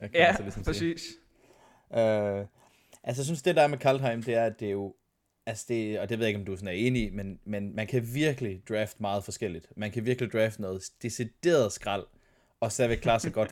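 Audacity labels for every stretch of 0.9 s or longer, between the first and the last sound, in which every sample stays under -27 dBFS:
0.920000	1.940000	silence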